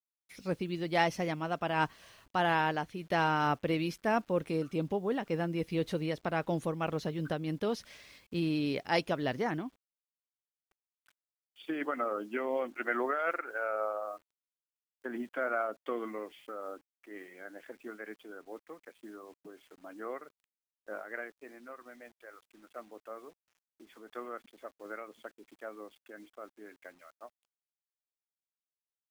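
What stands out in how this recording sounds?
a quantiser's noise floor 10-bit, dither none; random flutter of the level

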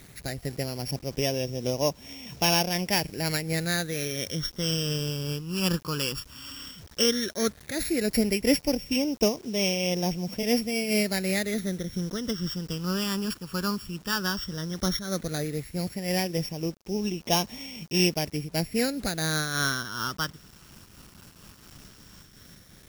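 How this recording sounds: a buzz of ramps at a fixed pitch in blocks of 8 samples; phasing stages 12, 0.13 Hz, lowest notch 660–1400 Hz; a quantiser's noise floor 8-bit, dither none; random flutter of the level

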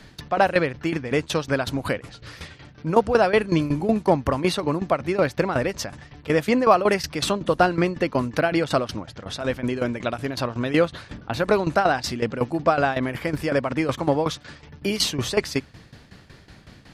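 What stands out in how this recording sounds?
tremolo saw down 5.4 Hz, depth 80%

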